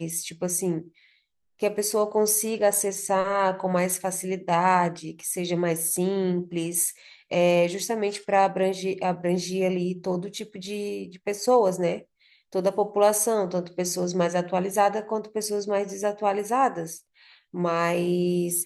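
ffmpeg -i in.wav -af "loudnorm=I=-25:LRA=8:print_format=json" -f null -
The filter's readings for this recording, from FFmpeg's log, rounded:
"input_i" : "-25.2",
"input_tp" : "-7.9",
"input_lra" : "1.9",
"input_thresh" : "-35.6",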